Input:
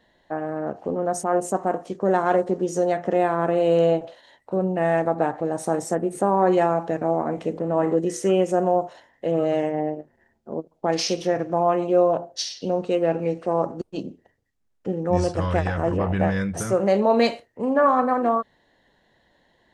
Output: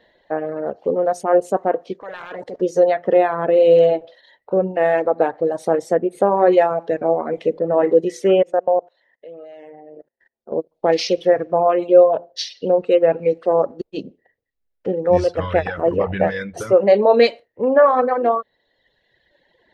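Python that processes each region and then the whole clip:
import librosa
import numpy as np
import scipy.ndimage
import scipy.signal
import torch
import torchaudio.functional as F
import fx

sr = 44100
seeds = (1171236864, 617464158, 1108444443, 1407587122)

y = fx.spec_clip(x, sr, under_db=18, at=(2.0, 2.6), fade=0.02)
y = fx.level_steps(y, sr, step_db=17, at=(2.0, 2.6), fade=0.02)
y = fx.clip_hard(y, sr, threshold_db=-27.0, at=(2.0, 2.6), fade=0.02)
y = fx.chain(y, sr, fx.low_shelf(hz=190.0, db=-7.0),
    fx.level_steps(step_db=21), at=(8.42, 10.52))
y = fx.dereverb_blind(y, sr, rt60_s=1.4)
y = fx.graphic_eq_10(y, sr, hz=(500, 2000, 4000, 8000), db=(11, 6, 7, -9))
y = y * librosa.db_to_amplitude(-1.0)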